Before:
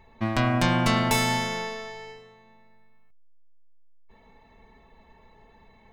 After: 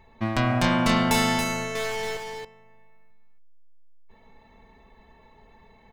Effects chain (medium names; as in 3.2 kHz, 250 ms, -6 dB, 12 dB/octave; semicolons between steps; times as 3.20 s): 1.75–2.17 s: waveshaping leveller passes 5; on a send: delay 279 ms -6 dB